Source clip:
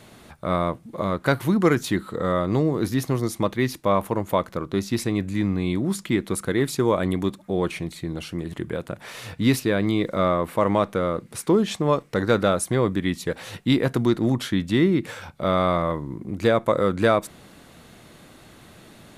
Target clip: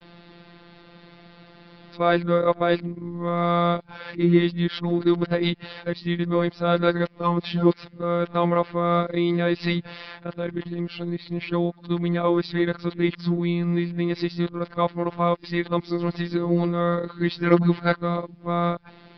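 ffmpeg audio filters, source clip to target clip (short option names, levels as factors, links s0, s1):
-af "areverse,aresample=11025,aresample=44100,afftfilt=real='hypot(re,im)*cos(PI*b)':imag='0':win_size=1024:overlap=0.75,volume=1.41"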